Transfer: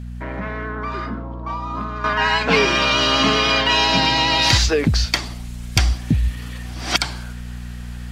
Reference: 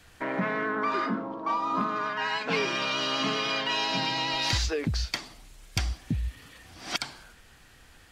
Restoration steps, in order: de-hum 60.1 Hz, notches 4; gain correction -11.5 dB, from 2.04 s

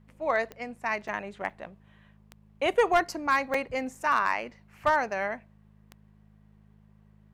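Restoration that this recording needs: clip repair -15 dBFS; de-click; de-hum 52.2 Hz, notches 4; interpolate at 0.76/1.08/1.50/2.59/3.54/3.95 s, 4.2 ms

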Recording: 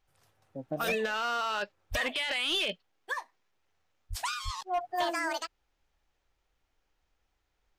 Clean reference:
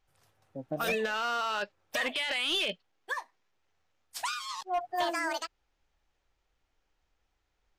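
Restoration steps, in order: de-plosive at 1.90/4.09/4.44 s

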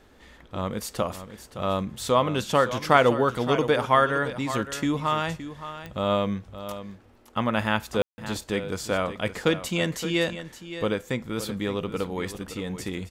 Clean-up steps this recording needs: de-click; room tone fill 8.02–8.18 s; inverse comb 568 ms -12 dB

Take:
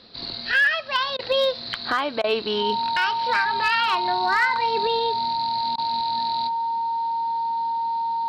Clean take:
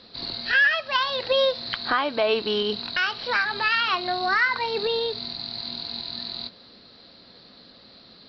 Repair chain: clip repair -13 dBFS; band-stop 920 Hz, Q 30; interpolate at 1.17/2.22/5.76 s, 19 ms

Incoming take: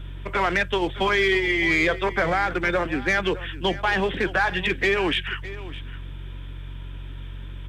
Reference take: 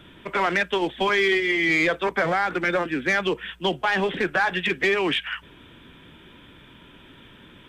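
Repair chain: de-hum 46 Hz, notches 3; inverse comb 611 ms -16.5 dB

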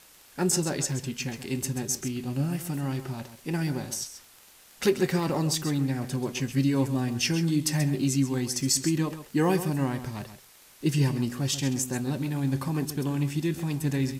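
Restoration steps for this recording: de-click; noise reduction 19 dB, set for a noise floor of -53 dBFS; inverse comb 133 ms -11.5 dB

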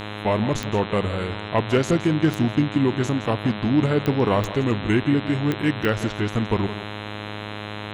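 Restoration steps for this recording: clip repair -9.5 dBFS; de-click; de-hum 104.7 Hz, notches 39; inverse comb 166 ms -14 dB

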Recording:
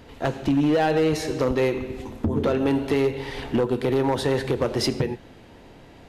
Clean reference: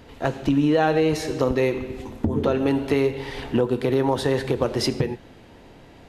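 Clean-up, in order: clip repair -15.5 dBFS

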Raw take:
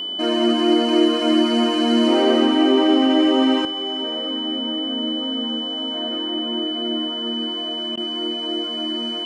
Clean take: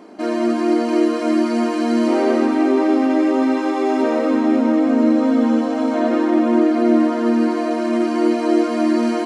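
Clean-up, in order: band-stop 3 kHz, Q 30; interpolate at 7.96 s, 12 ms; gain correction +11.5 dB, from 3.65 s

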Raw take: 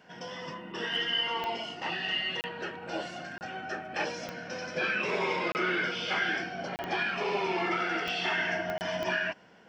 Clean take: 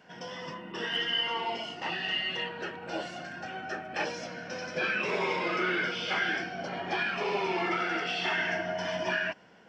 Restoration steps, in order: de-click; interpolate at 2.41/3.38/5.52/6.76/8.78 s, 29 ms

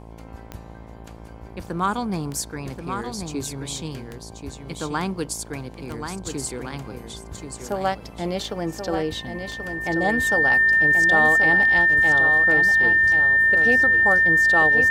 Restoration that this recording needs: de-click; de-hum 55.8 Hz, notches 19; band-stop 1.8 kHz, Q 30; inverse comb 1082 ms -7 dB

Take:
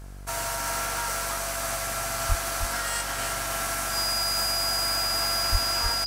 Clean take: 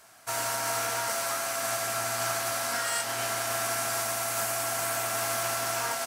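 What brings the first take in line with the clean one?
de-hum 48 Hz, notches 36; band-stop 4.9 kHz, Q 30; 2.28–2.40 s: high-pass 140 Hz 24 dB/octave; 5.51–5.63 s: high-pass 140 Hz 24 dB/octave; inverse comb 312 ms -7 dB

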